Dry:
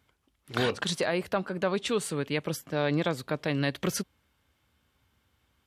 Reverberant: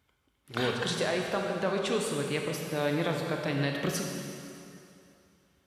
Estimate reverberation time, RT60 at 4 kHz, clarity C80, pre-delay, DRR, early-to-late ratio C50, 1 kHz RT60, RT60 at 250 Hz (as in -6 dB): 2.7 s, 2.5 s, 3.0 dB, 24 ms, 1.0 dB, 2.0 dB, 2.7 s, 2.6 s